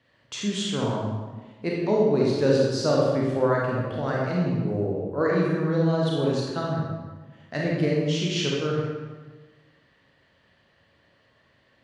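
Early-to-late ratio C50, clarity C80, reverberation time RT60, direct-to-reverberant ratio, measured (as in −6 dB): −1.5 dB, 1.5 dB, 1.3 s, −4.0 dB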